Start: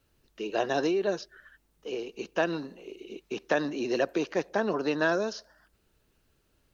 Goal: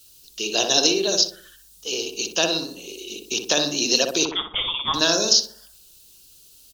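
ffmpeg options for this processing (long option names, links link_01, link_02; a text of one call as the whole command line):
ffmpeg -i in.wav -filter_complex "[0:a]aexciter=amount=14.4:drive=5.2:freq=3000,asettb=1/sr,asplit=3[link_01][link_02][link_03];[link_01]atrim=end=4.254[link_04];[link_02]atrim=start=4.25:end=4.94,asetpts=PTS-STARTPTS,afade=type=in:duration=0.004:curve=qsin,afade=type=out:start_time=0.686:duration=0.004:curve=qsin,lowpass=frequency=3200:width_type=q:width=0.5098,lowpass=frequency=3200:width_type=q:width=0.6013,lowpass=frequency=3200:width_type=q:width=0.9,lowpass=frequency=3200:width_type=q:width=2.563,afreqshift=-3800[link_05];[link_03]atrim=start=4.936[link_06];[link_04][link_05]acrossfade=duration=0.004:curve1=hsin:curve2=qsin[link_07];[link_07][link_06]acrossfade=duration=0.004:curve1=qsin:curve2=hsin,asplit=2[link_08][link_09];[link_09]adelay=61,lowpass=frequency=1100:poles=1,volume=-3dB,asplit=2[link_10][link_11];[link_11]adelay=61,lowpass=frequency=1100:poles=1,volume=0.49,asplit=2[link_12][link_13];[link_13]adelay=61,lowpass=frequency=1100:poles=1,volume=0.49,asplit=2[link_14][link_15];[link_15]adelay=61,lowpass=frequency=1100:poles=1,volume=0.49,asplit=2[link_16][link_17];[link_17]adelay=61,lowpass=frequency=1100:poles=1,volume=0.49,asplit=2[link_18][link_19];[link_19]adelay=61,lowpass=frequency=1100:poles=1,volume=0.49[link_20];[link_08][link_10][link_12][link_14][link_16][link_18][link_20]amix=inputs=7:normalize=0,volume=1.5dB" out.wav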